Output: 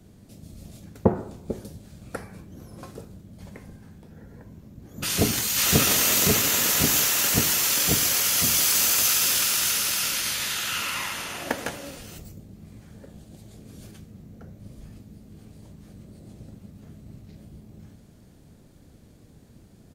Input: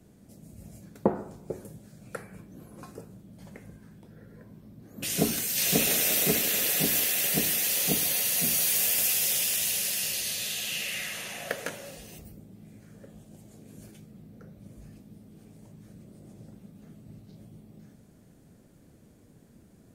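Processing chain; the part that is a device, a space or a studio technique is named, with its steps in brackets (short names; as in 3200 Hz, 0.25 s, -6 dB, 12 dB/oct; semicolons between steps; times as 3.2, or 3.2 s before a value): octave pedal (harmoniser -12 st -2 dB); gain +2.5 dB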